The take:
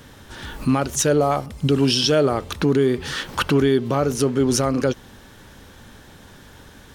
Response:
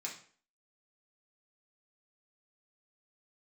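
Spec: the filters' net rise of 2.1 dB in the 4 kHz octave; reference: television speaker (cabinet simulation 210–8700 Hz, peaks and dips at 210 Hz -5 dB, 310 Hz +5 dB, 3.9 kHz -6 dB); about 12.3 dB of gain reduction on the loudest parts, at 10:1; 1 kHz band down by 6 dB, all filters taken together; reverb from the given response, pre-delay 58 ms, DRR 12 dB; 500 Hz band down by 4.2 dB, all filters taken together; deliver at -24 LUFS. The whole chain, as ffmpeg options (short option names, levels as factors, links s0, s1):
-filter_complex "[0:a]equalizer=f=500:t=o:g=-4.5,equalizer=f=1000:t=o:g=-7.5,equalizer=f=4000:t=o:g=6,acompressor=threshold=0.0447:ratio=10,asplit=2[s0][s1];[1:a]atrim=start_sample=2205,adelay=58[s2];[s1][s2]afir=irnorm=-1:irlink=0,volume=0.266[s3];[s0][s3]amix=inputs=2:normalize=0,highpass=f=210:w=0.5412,highpass=f=210:w=1.3066,equalizer=f=210:t=q:w=4:g=-5,equalizer=f=310:t=q:w=4:g=5,equalizer=f=3900:t=q:w=4:g=-6,lowpass=f=8700:w=0.5412,lowpass=f=8700:w=1.3066,volume=2.66"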